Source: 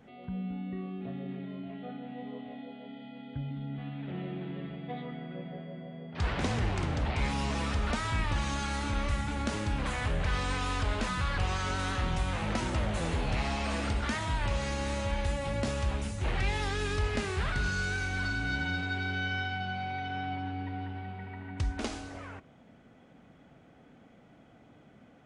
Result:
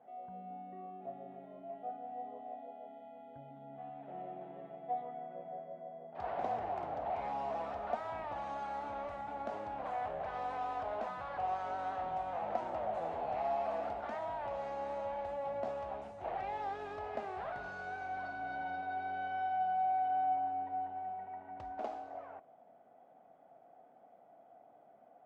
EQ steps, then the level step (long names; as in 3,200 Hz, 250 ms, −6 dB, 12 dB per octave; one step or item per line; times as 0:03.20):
resonant band-pass 710 Hz, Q 6
+7.5 dB